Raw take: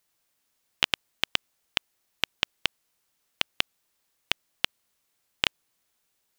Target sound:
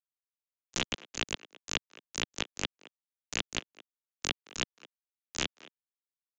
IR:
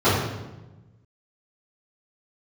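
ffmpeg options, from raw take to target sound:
-filter_complex "[0:a]aemphasis=mode=reproduction:type=50fm,afftdn=nr=16:nf=-52,lowshelf=f=120:g=6,acontrast=44,acrusher=bits=4:mix=0:aa=0.5,asplit=3[s0][s1][s2];[s1]asetrate=37084,aresample=44100,atempo=1.18921,volume=0.501[s3];[s2]asetrate=88200,aresample=44100,atempo=0.5,volume=0.501[s4];[s0][s3][s4]amix=inputs=3:normalize=0,acrossover=split=170|430|4500[s5][s6][s7][s8];[s5]acompressor=threshold=0.00447:ratio=4[s9];[s6]acompressor=threshold=0.00891:ratio=4[s10];[s7]acompressor=threshold=0.0158:ratio=4[s11];[s8]acompressor=threshold=0.00562:ratio=4[s12];[s9][s10][s11][s12]amix=inputs=4:normalize=0,asetrate=49501,aresample=44100,atempo=0.890899,asplit=2[s13][s14];[s14]adelay=220,highpass=300,lowpass=3400,asoftclip=type=hard:threshold=0.075,volume=0.141[s15];[s13][s15]amix=inputs=2:normalize=0,aresample=16000,aresample=44100,volume=1.41"

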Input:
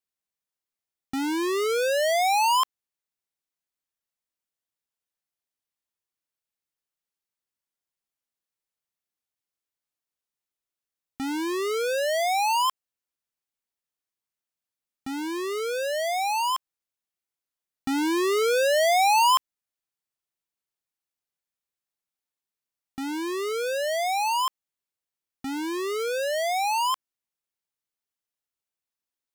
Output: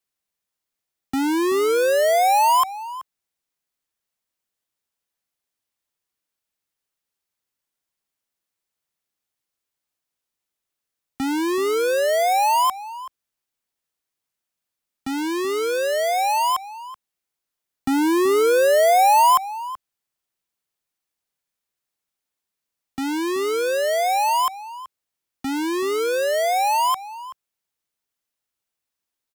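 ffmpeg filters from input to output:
-filter_complex "[0:a]acrossover=split=110|1600|8000[s0][s1][s2][s3];[s2]alimiter=level_in=2.82:limit=0.0631:level=0:latency=1,volume=0.355[s4];[s0][s1][s4][s3]amix=inputs=4:normalize=0,asplit=2[s5][s6];[s6]adelay=379,volume=0.178,highshelf=f=4000:g=-8.53[s7];[s5][s7]amix=inputs=2:normalize=0,volume=2"

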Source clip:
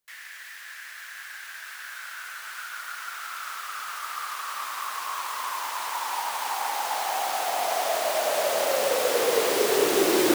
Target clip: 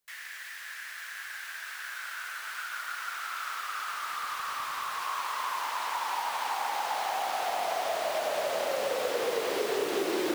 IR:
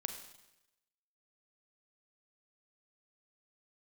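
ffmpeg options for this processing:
-filter_complex "[0:a]acrossover=split=200|4900[s0][s1][s2];[s0]acompressor=threshold=0.002:ratio=4[s3];[s1]acompressor=threshold=0.0398:ratio=4[s4];[s2]acompressor=threshold=0.00447:ratio=4[s5];[s3][s4][s5]amix=inputs=3:normalize=0,asettb=1/sr,asplit=3[s6][s7][s8];[s6]atrim=end=3.914[s9];[s7]atrim=start=3.91:end=5.01,asetpts=PTS-STARTPTS,afade=t=in:d=0.004:c=qsin,afade=t=out:st=1.096:d=0.004:c=qsin,asoftclip=type=hard:threshold=0.0335[s10];[s8]atrim=start=5.006[s11];[s9][s10]acrossfade=d=0.004:c1=hsin:c2=qsin[s12];[s12][s11]acrossfade=d=0.004:c1=qsin:c2=hsin"

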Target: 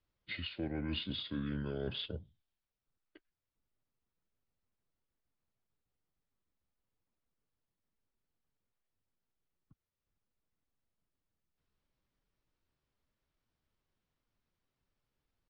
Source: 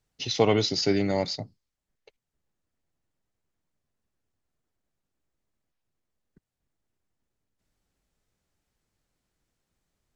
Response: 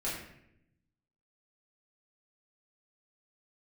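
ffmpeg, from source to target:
-filter_complex "[0:a]acrossover=split=420[s0][s1];[s1]acompressor=threshold=0.0562:ratio=6[s2];[s0][s2]amix=inputs=2:normalize=0,asetrate=31752,aresample=44100,lowpass=4000,areverse,acompressor=threshold=0.0355:ratio=6,areverse,atempo=0.91,volume=0.531"

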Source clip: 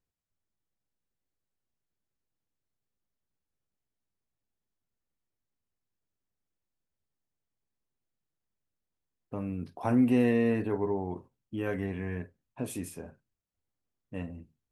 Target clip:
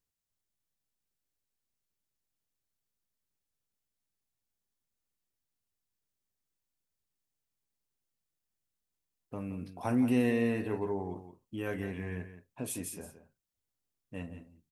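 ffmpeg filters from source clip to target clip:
-af "highshelf=f=3100:g=9,aecho=1:1:171:0.251,volume=0.631"

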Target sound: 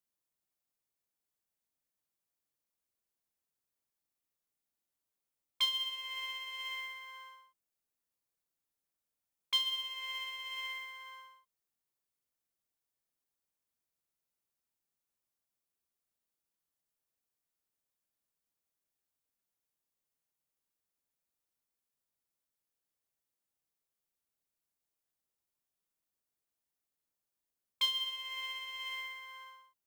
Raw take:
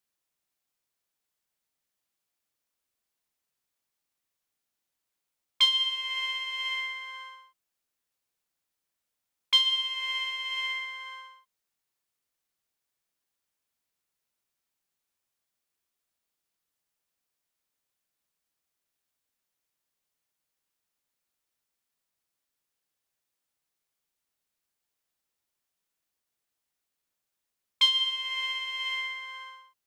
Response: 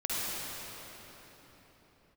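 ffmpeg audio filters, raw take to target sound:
-af "acrusher=bits=6:mode=log:mix=0:aa=0.000001,equalizer=f=2700:w=0.38:g=-6,volume=0.668"

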